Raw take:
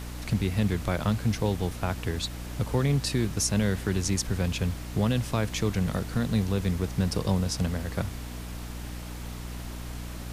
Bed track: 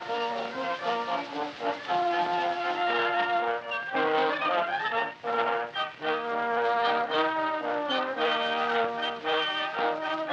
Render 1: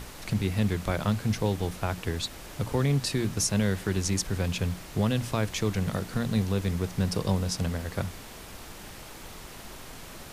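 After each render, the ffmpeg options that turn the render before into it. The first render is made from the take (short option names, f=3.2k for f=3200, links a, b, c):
-af "bandreject=f=60:t=h:w=6,bandreject=f=120:t=h:w=6,bandreject=f=180:t=h:w=6,bandreject=f=240:t=h:w=6,bandreject=f=300:t=h:w=6"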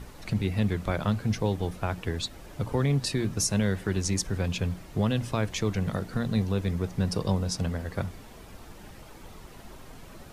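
-af "afftdn=nr=9:nf=-44"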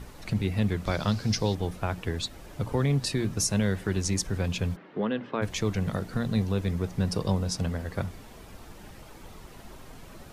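-filter_complex "[0:a]asettb=1/sr,asplit=3[a][b][c];[a]atrim=end=0.864[d];[b]atrim=start=0.86:end=1.55,asetpts=PTS-STARTPTS,afade=t=in:d=0.004:c=qsin,afade=t=out:st=0.686:d=0.004:c=qsin,equalizer=f=5k:t=o:w=0.78:g=14[e];[c]atrim=start=1.546[f];[d][e]acrossfade=d=0.004:c1=hsin:c2=qsin[g];[g][f]acrossfade=d=0.004:c1=qsin:c2=hsin,asplit=3[h][i][j];[h]afade=t=out:st=4.75:d=0.02[k];[i]highpass=f=200:w=0.5412,highpass=f=200:w=1.3066,equalizer=f=450:t=q:w=4:g=4,equalizer=f=680:t=q:w=4:g=-4,equalizer=f=1.6k:t=q:w=4:g=3,equalizer=f=2.5k:t=q:w=4:g=-4,lowpass=f=3k:w=0.5412,lowpass=f=3k:w=1.3066,afade=t=in:st=4.75:d=0.02,afade=t=out:st=5.41:d=0.02[l];[j]afade=t=in:st=5.41:d=0.02[m];[k][l][m]amix=inputs=3:normalize=0"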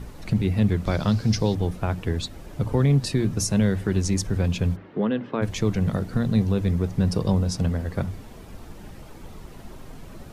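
-af "lowshelf=f=490:g=7,bandreject=f=50:t=h:w=6,bandreject=f=100:t=h:w=6"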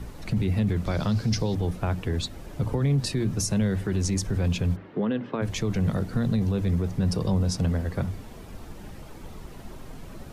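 -filter_complex "[0:a]alimiter=limit=-16.5dB:level=0:latency=1:release=14,acrossover=split=190[a][b];[b]acompressor=threshold=-24dB:ratio=6[c];[a][c]amix=inputs=2:normalize=0"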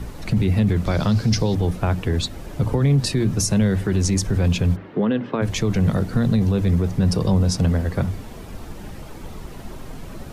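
-af "volume=6dB"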